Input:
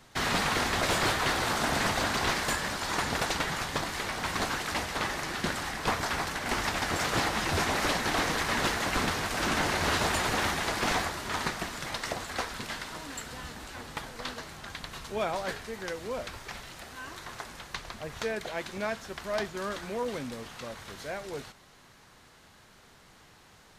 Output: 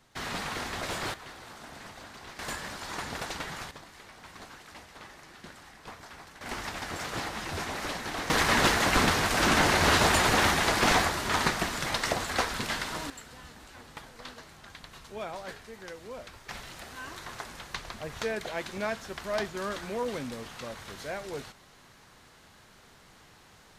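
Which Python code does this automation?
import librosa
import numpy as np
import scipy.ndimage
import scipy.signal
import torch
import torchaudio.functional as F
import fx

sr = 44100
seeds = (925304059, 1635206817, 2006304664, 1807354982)

y = fx.gain(x, sr, db=fx.steps((0.0, -7.0), (1.14, -18.0), (2.39, -6.5), (3.71, -16.5), (6.41, -6.5), (8.3, 5.0), (13.1, -7.0), (16.49, 0.5)))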